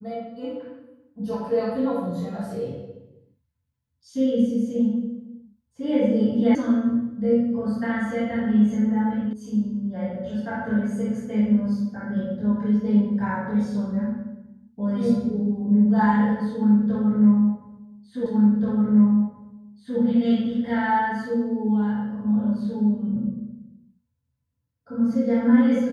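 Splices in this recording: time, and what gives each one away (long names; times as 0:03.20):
0:06.55: cut off before it has died away
0:09.33: cut off before it has died away
0:18.26: the same again, the last 1.73 s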